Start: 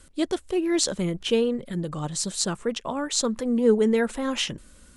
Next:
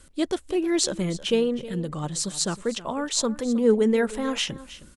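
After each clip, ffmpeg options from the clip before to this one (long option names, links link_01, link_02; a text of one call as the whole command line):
ffmpeg -i in.wav -af "aecho=1:1:315:0.15" out.wav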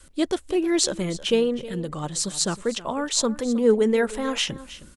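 ffmpeg -i in.wav -af "adynamicequalizer=threshold=0.0126:dfrequency=180:dqfactor=1.1:tfrequency=180:tqfactor=1.1:attack=5:release=100:ratio=0.375:range=2.5:mode=cutabove:tftype=bell,volume=2dB" out.wav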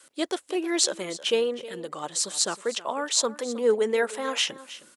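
ffmpeg -i in.wav -af "highpass=440" out.wav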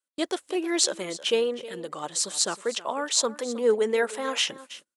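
ffmpeg -i in.wav -af "agate=range=-35dB:threshold=-43dB:ratio=16:detection=peak" out.wav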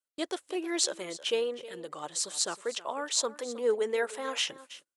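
ffmpeg -i in.wav -af "equalizer=frequency=210:width_type=o:width=0.55:gain=-6.5,volume=-5dB" out.wav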